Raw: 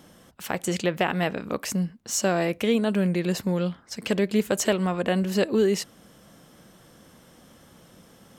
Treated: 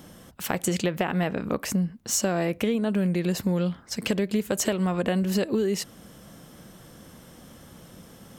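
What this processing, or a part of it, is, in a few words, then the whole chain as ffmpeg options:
ASMR close-microphone chain: -filter_complex "[0:a]lowshelf=f=210:g=5.5,acompressor=threshold=-24dB:ratio=6,highshelf=f=11k:g=6,asplit=3[a][b][c];[a]afade=t=out:st=0.99:d=0.02[d];[b]adynamicequalizer=threshold=0.00398:dfrequency=2600:dqfactor=0.7:tfrequency=2600:tqfactor=0.7:attack=5:release=100:ratio=0.375:range=2.5:mode=cutabove:tftype=highshelf,afade=t=in:st=0.99:d=0.02,afade=t=out:st=2.96:d=0.02[e];[c]afade=t=in:st=2.96:d=0.02[f];[d][e][f]amix=inputs=3:normalize=0,volume=2.5dB"

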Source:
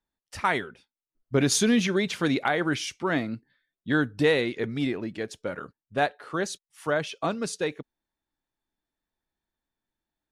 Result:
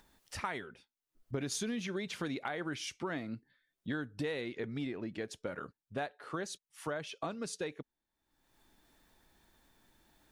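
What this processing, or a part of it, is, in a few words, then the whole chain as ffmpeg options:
upward and downward compression: -filter_complex "[0:a]asettb=1/sr,asplit=3[a][b][c];[a]atrim=end=4.484[d];[b]atrim=start=4.48:end=5.23,asetpts=PTS-STARTPTS,afade=t=in:d=0.004:c=qsin,afade=t=out:st=0.746:d=0.004:c=qsin,highshelf=f=6.3k:g=-6[e];[c]atrim=start=5.226[f];[d][e]acrossfade=d=0.004:c1=hsin:c2=qsin[g];[g][f]acrossfade=d=0.004:c1=qsin:c2=hsin,acompressor=mode=upward:threshold=-45dB:ratio=2.5,acompressor=threshold=-33dB:ratio=4,volume=-3dB"

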